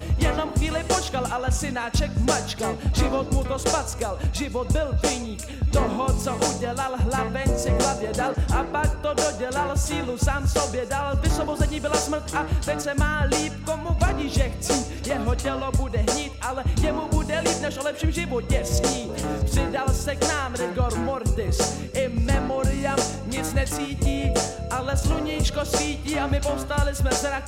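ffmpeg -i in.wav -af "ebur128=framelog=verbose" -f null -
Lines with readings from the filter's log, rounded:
Integrated loudness:
  I:         -24.7 LUFS
  Threshold: -34.7 LUFS
Loudness range:
  LRA:         0.8 LU
  Threshold: -44.7 LUFS
  LRA low:   -25.1 LUFS
  LRA high:  -24.2 LUFS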